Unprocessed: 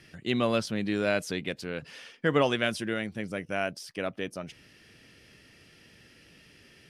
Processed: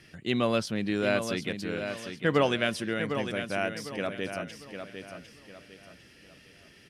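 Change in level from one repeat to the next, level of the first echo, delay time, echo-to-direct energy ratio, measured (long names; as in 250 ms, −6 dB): −9.5 dB, −8.0 dB, 752 ms, −7.5 dB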